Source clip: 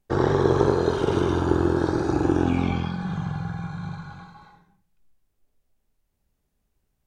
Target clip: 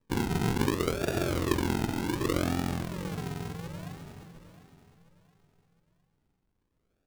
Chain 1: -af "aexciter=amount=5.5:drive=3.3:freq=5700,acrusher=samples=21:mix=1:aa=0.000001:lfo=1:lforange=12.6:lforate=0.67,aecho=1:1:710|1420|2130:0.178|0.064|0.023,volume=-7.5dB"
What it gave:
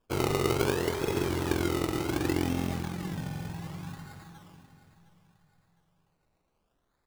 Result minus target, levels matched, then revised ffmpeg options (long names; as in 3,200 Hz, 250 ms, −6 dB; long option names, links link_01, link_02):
sample-and-hold swept by an LFO: distortion −13 dB
-af "aexciter=amount=5.5:drive=3.3:freq=5700,acrusher=samples=60:mix=1:aa=0.000001:lfo=1:lforange=36:lforate=0.67,aecho=1:1:710|1420|2130:0.178|0.064|0.023,volume=-7.5dB"